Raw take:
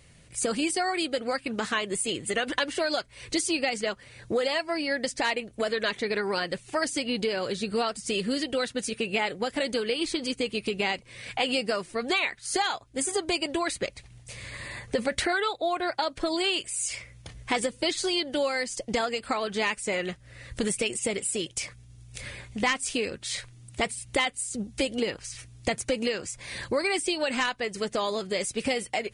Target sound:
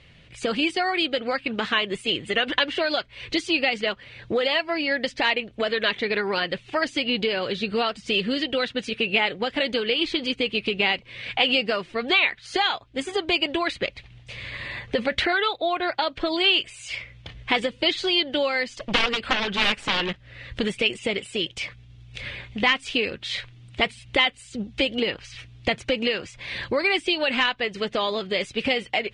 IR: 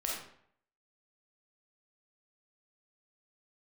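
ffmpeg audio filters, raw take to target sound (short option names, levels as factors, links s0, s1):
-filter_complex "[0:a]asplit=3[s0][s1][s2];[s0]afade=t=out:st=18.79:d=0.02[s3];[s1]aeval=exprs='0.211*(cos(1*acos(clip(val(0)/0.211,-1,1)))-cos(1*PI/2))+0.0237*(cos(4*acos(clip(val(0)/0.211,-1,1)))-cos(4*PI/2))+0.0473*(cos(6*acos(clip(val(0)/0.211,-1,1)))-cos(6*PI/2))+0.0841*(cos(7*acos(clip(val(0)/0.211,-1,1)))-cos(7*PI/2))+0.00668*(cos(8*acos(clip(val(0)/0.211,-1,1)))-cos(8*PI/2))':c=same,afade=t=in:st=18.79:d=0.02,afade=t=out:st=20.12:d=0.02[s4];[s2]afade=t=in:st=20.12:d=0.02[s5];[s3][s4][s5]amix=inputs=3:normalize=0,lowpass=f=3200:t=q:w=2.1,volume=1.33"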